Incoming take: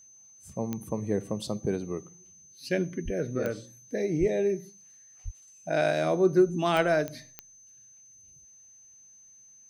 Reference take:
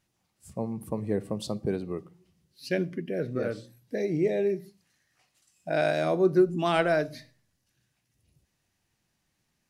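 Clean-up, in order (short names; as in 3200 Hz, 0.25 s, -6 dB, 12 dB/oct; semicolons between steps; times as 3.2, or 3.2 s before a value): de-click; notch 6200 Hz, Q 30; 3.04–3.16 HPF 140 Hz 24 dB/oct; 4.19–4.31 HPF 140 Hz 24 dB/oct; 5.24–5.36 HPF 140 Hz 24 dB/oct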